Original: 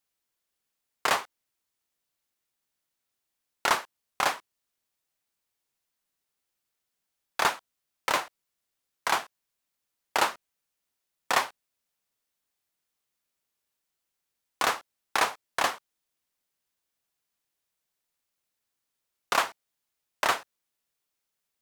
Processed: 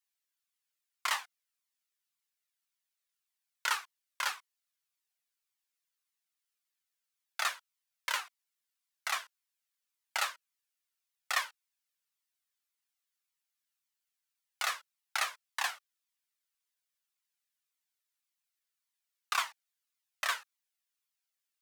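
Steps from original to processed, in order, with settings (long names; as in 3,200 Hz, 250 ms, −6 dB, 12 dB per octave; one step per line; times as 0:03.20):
high-pass filter 1,300 Hz 12 dB per octave
flanger whose copies keep moving one way falling 1.8 Hz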